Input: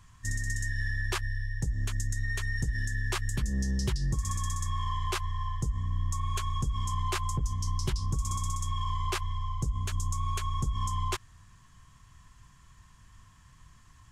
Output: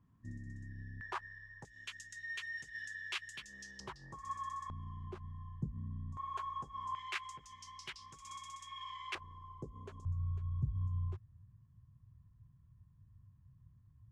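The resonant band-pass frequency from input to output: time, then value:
resonant band-pass, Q 2
250 Hz
from 0:01.01 940 Hz
from 0:01.65 2,700 Hz
from 0:03.80 1,000 Hz
from 0:04.70 200 Hz
from 0:06.17 870 Hz
from 0:06.95 2,200 Hz
from 0:09.15 430 Hz
from 0:10.05 110 Hz

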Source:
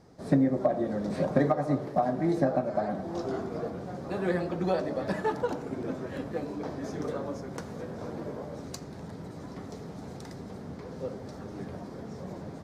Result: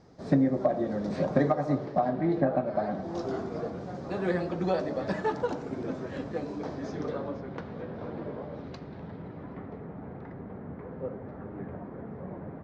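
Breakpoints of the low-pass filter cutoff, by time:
low-pass filter 24 dB per octave
0:01.71 6,700 Hz
0:02.46 3,200 Hz
0:03.11 7,000 Hz
0:06.66 7,000 Hz
0:07.45 3,600 Hz
0:08.94 3,600 Hz
0:09.89 2,100 Hz

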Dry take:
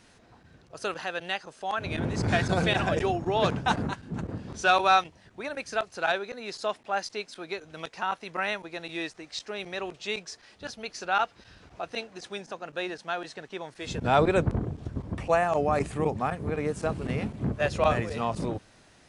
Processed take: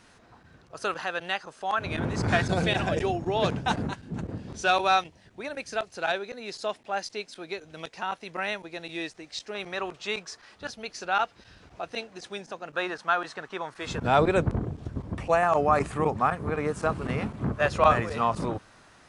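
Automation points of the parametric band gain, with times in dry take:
parametric band 1,200 Hz 1 octave
+5 dB
from 0:02.42 −3 dB
from 0:09.55 +7 dB
from 0:10.67 0 dB
from 0:12.74 +12 dB
from 0:14.04 +1.5 dB
from 0:15.43 +8.5 dB

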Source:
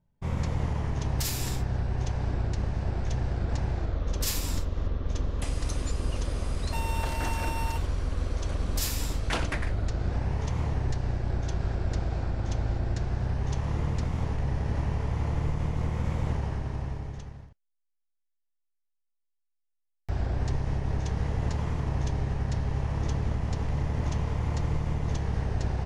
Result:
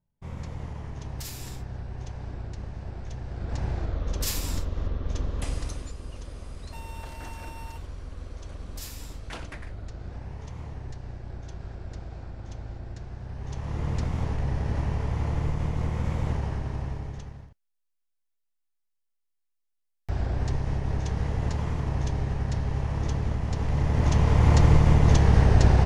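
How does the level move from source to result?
0:03.25 −7.5 dB
0:03.65 0 dB
0:05.54 0 dB
0:05.96 −9.5 dB
0:13.25 −9.5 dB
0:13.95 +1 dB
0:23.49 +1 dB
0:24.51 +11 dB

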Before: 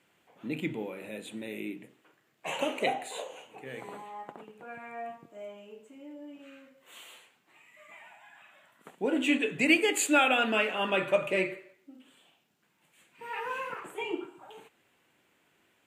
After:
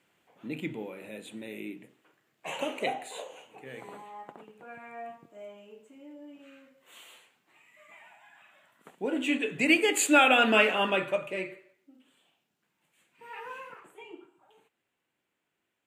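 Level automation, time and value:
0:09.30 −2 dB
0:10.69 +6 dB
0:11.27 −6 dB
0:13.49 −6 dB
0:14.07 −13 dB

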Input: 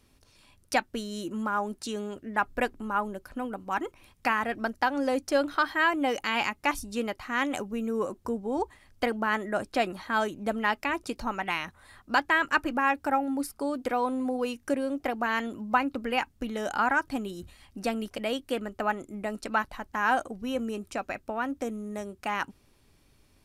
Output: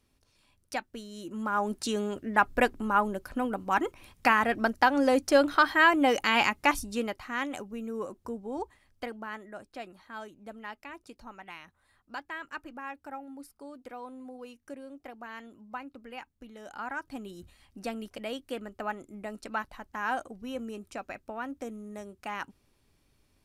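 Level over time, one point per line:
0:01.14 −8 dB
0:01.73 +3.5 dB
0:06.59 +3.5 dB
0:07.56 −6 dB
0:08.63 −6 dB
0:09.62 −15 dB
0:16.59 −15 dB
0:17.36 −6 dB

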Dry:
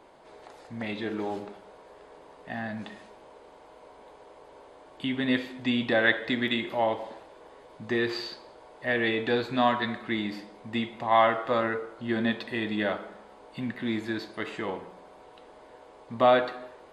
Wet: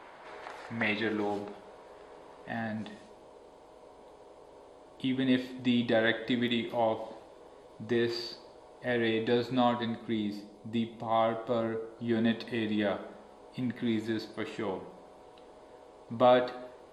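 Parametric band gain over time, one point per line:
parametric band 1,700 Hz 2 octaves
0:00.85 +10 dB
0:01.28 −1 dB
0:02.49 −1 dB
0:03.00 −7.5 dB
0:09.50 −7.5 dB
0:10.15 −14.5 dB
0:11.74 −14.5 dB
0:12.21 −6.5 dB

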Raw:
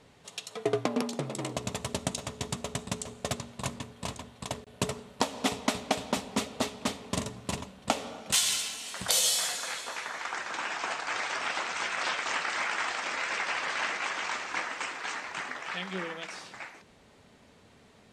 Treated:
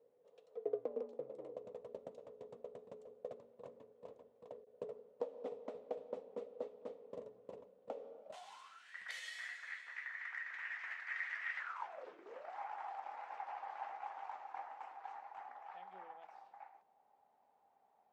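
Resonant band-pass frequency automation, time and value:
resonant band-pass, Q 11
0:08.18 490 Hz
0:08.96 1,900 Hz
0:11.58 1,900 Hz
0:12.18 330 Hz
0:12.56 800 Hz

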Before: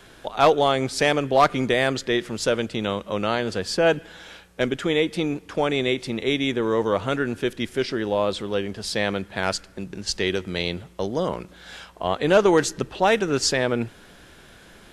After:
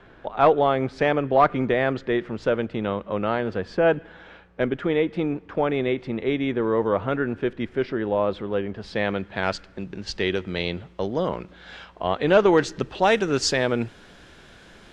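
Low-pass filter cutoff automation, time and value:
0:08.68 1,900 Hz
0:09.43 3,600 Hz
0:12.58 3,600 Hz
0:13.03 6,900 Hz

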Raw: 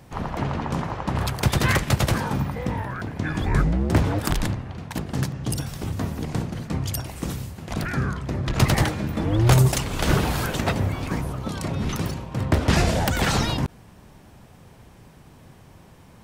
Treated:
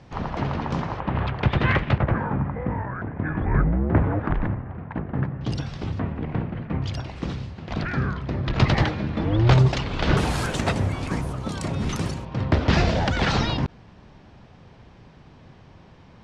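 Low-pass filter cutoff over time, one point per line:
low-pass filter 24 dB per octave
5,700 Hz
from 0:01.00 3,100 Hz
from 0:01.98 1,900 Hz
from 0:05.41 4,800 Hz
from 0:05.99 2,600 Hz
from 0:06.82 4,600 Hz
from 0:10.17 10,000 Hz
from 0:12.25 5,100 Hz

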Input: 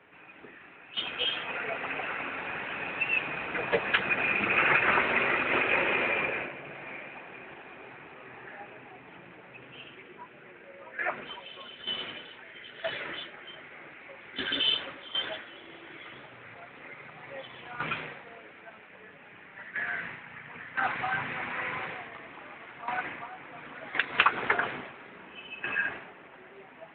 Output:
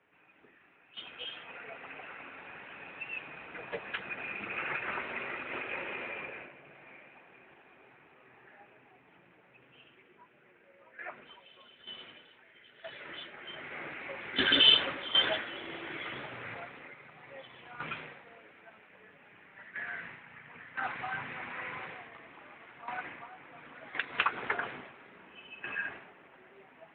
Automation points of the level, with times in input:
0:12.93 −12 dB
0:13.17 −5.5 dB
0:13.77 +5.5 dB
0:16.54 +5.5 dB
0:16.98 −6.5 dB

